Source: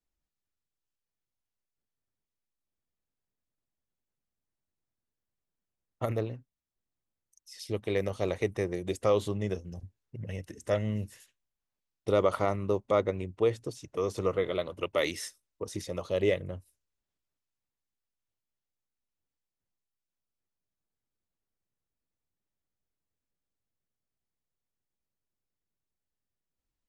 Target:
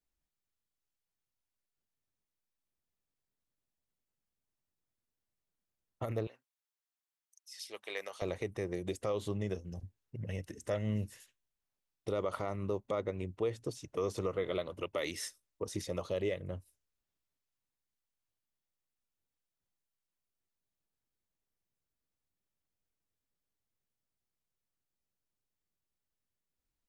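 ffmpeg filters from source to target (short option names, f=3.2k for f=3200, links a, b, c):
-filter_complex "[0:a]asettb=1/sr,asplit=3[a][b][c];[a]atrim=end=6.274[d];[b]atrim=start=6.27:end=8.22,asetpts=PTS-STARTPTS,afade=t=in:d=0.004:c=qsin,afade=t=out:st=1.946:d=0.004:c=qsin,highpass=900[e];[c]atrim=start=8.216[f];[d][e]acrossfade=d=0.004:c1=hsin:c2=qsin[g];[g][f]acrossfade=d=0.004:c1=qsin:c2=hsin,alimiter=limit=-22.5dB:level=0:latency=1:release=194,volume=-1.5dB"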